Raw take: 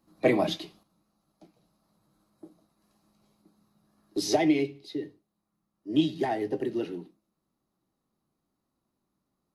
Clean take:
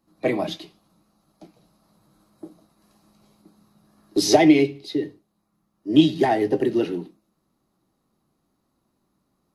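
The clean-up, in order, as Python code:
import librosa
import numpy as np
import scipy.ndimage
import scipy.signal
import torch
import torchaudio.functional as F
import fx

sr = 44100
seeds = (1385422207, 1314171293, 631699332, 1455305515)

y = fx.gain(x, sr, db=fx.steps((0.0, 0.0), (0.83, 9.0)))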